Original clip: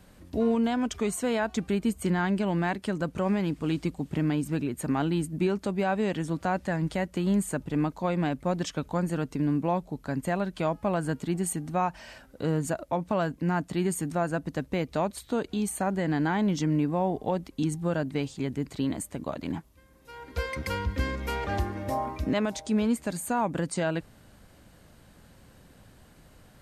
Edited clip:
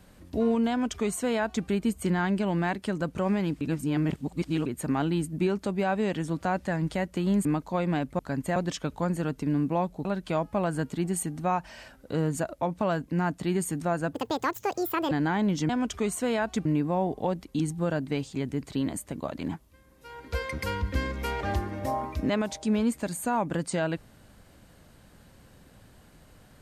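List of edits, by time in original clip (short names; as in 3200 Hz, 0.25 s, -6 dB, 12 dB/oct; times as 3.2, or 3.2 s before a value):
0.7–1.66 copy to 16.69
3.61–4.66 reverse
7.45–7.75 cut
9.98–10.35 move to 8.49
14.43–16.11 speed 171%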